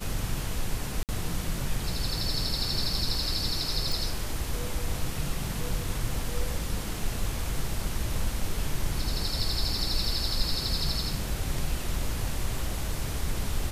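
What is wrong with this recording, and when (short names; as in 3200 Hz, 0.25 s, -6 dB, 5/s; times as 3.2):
1.03–1.09 gap 58 ms
3.92 pop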